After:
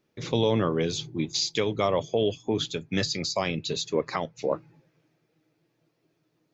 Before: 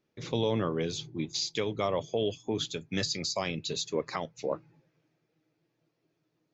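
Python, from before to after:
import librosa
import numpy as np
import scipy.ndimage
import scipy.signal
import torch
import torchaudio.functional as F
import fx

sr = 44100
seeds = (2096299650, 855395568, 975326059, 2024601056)

y = fx.high_shelf(x, sr, hz=6200.0, db=-7.5, at=(2.08, 4.42))
y = y * librosa.db_to_amplitude(5.0)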